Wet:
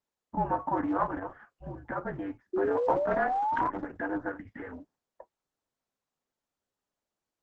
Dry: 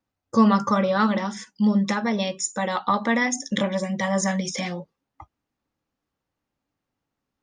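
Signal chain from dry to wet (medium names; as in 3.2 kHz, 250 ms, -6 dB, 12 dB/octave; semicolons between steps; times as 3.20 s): painted sound rise, 2.53–3.70 s, 630–1300 Hz -22 dBFS; mistuned SSB -270 Hz 420–2000 Hz; trim -6 dB; Opus 10 kbps 48 kHz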